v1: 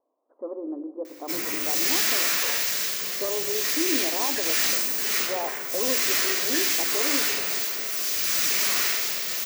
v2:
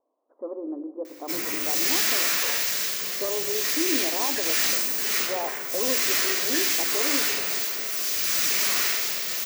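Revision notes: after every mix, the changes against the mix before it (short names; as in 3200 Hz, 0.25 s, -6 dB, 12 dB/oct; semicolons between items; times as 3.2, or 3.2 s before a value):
none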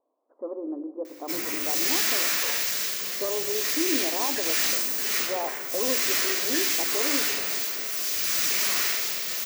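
background: send -9.5 dB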